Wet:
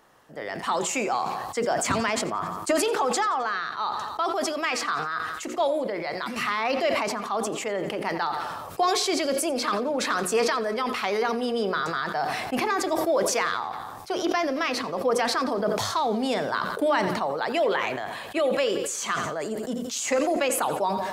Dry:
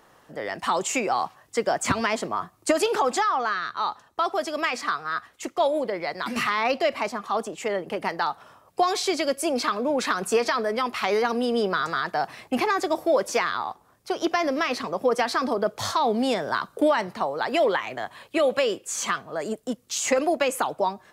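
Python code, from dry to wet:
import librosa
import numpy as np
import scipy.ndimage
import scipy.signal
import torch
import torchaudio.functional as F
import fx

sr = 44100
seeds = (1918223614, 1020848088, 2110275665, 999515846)

p1 = fx.hum_notches(x, sr, base_hz=60, count=9)
p2 = p1 + fx.echo_feedback(p1, sr, ms=87, feedback_pct=52, wet_db=-17.5, dry=0)
p3 = fx.sustainer(p2, sr, db_per_s=30.0)
y = p3 * 10.0 ** (-2.5 / 20.0)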